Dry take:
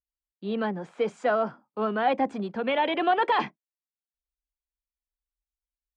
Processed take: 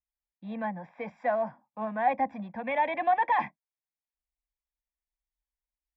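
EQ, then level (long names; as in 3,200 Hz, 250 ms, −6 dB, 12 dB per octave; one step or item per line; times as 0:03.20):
Savitzky-Golay smoothing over 25 samples
parametric band 170 Hz −2.5 dB 1.4 octaves
phaser with its sweep stopped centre 2,000 Hz, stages 8
0.0 dB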